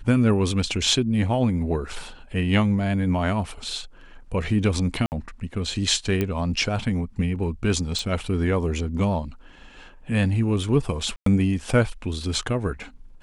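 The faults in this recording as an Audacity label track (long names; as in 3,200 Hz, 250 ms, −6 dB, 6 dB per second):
5.060000	5.120000	drop-out 59 ms
6.210000	6.210000	click −11 dBFS
7.990000	7.990000	click
11.160000	11.260000	drop-out 103 ms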